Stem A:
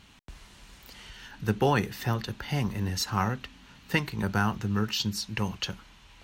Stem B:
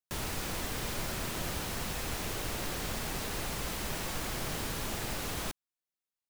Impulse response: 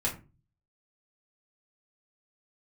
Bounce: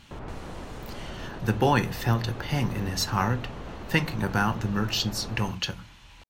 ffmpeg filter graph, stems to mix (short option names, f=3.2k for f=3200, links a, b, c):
-filter_complex "[0:a]volume=1dB,asplit=2[a][b];[b]volume=-14.5dB[c];[1:a]lowpass=1.2k,alimiter=level_in=6.5dB:limit=-24dB:level=0:latency=1,volume=-6.5dB,volume=1dB[d];[2:a]atrim=start_sample=2205[e];[c][e]afir=irnorm=-1:irlink=0[f];[a][d][f]amix=inputs=3:normalize=0"